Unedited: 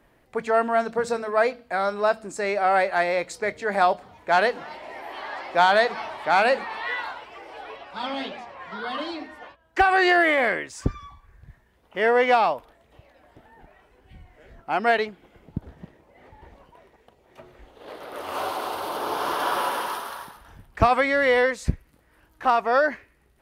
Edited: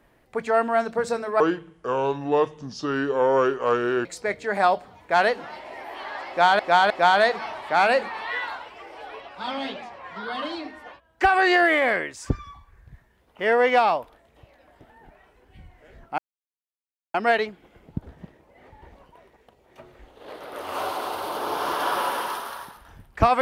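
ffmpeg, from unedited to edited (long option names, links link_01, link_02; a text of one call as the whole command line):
ffmpeg -i in.wav -filter_complex "[0:a]asplit=6[link_01][link_02][link_03][link_04][link_05][link_06];[link_01]atrim=end=1.404[link_07];[link_02]atrim=start=1.4:end=3.23,asetpts=PTS-STARTPTS,asetrate=30429,aresample=44100[link_08];[link_03]atrim=start=3.226:end=5.772[link_09];[link_04]atrim=start=5.458:end=5.772[link_10];[link_05]atrim=start=5.458:end=14.74,asetpts=PTS-STARTPTS,afade=type=out:start_time=9.278:duration=0.004:curve=hsin,apad=pad_dur=0.96[link_11];[link_06]atrim=start=14.74,asetpts=PTS-STARTPTS,afade=type=in:duration=0.004:curve=hsin[link_12];[link_07][link_08]acrossfade=duration=0.004:curve1=hsin:curve2=hsin[link_13];[link_13][link_09]acrossfade=duration=0.004:curve1=hsin:curve2=hsin[link_14];[link_14][link_10]acrossfade=duration=0.004:curve1=hsin:curve2=hsin[link_15];[link_11][link_12]concat=n=2:v=0:a=1[link_16];[link_15][link_16]acrossfade=duration=0.004:curve1=hsin:curve2=hsin" out.wav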